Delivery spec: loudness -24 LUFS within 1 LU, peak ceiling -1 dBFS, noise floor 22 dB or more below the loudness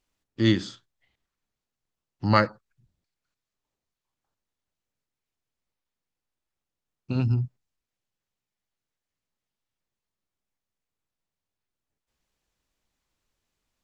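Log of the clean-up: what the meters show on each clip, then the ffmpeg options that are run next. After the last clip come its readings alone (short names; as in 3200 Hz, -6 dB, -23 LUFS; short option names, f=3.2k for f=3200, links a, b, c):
loudness -25.5 LUFS; peak -4.0 dBFS; loudness target -24.0 LUFS
-> -af "volume=1.5dB"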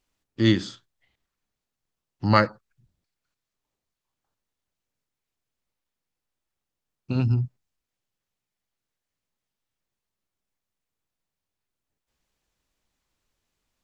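loudness -24.0 LUFS; peak -2.5 dBFS; noise floor -87 dBFS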